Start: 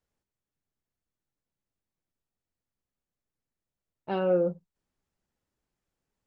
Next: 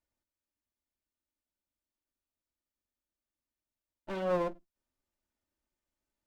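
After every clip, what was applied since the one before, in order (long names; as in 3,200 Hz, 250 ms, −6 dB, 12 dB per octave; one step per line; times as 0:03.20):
lower of the sound and its delayed copy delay 3.3 ms
level −3.5 dB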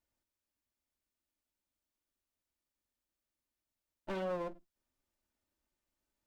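downward compressor 6 to 1, threshold −35 dBFS, peak gain reduction 10 dB
level +1 dB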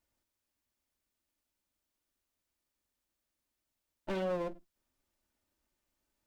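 dynamic equaliser 1,100 Hz, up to −4 dB, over −50 dBFS, Q 1.1
level +4 dB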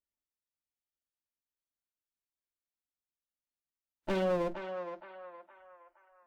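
feedback echo with a band-pass in the loop 467 ms, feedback 49%, band-pass 1,200 Hz, level −5 dB
noise reduction from a noise print of the clip's start 21 dB
level +4 dB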